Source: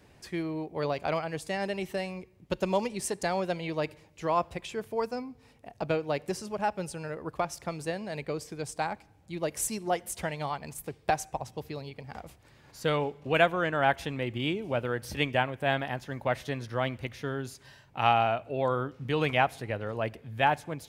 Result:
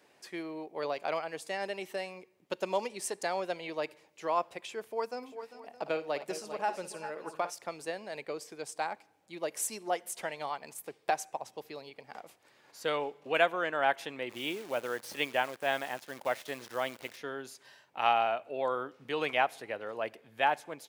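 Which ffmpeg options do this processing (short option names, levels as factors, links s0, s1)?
-filter_complex "[0:a]asplit=3[s0][s1][s2];[s0]afade=t=out:st=5.21:d=0.02[s3];[s1]aecho=1:1:56|397|410|615:0.237|0.224|0.133|0.119,afade=t=in:st=5.21:d=0.02,afade=t=out:st=7.49:d=0.02[s4];[s2]afade=t=in:st=7.49:d=0.02[s5];[s3][s4][s5]amix=inputs=3:normalize=0,asplit=3[s6][s7][s8];[s6]afade=t=out:st=14.29:d=0.02[s9];[s7]acrusher=bits=8:dc=4:mix=0:aa=0.000001,afade=t=in:st=14.29:d=0.02,afade=t=out:st=17.16:d=0.02[s10];[s8]afade=t=in:st=17.16:d=0.02[s11];[s9][s10][s11]amix=inputs=3:normalize=0,highpass=370,volume=0.75"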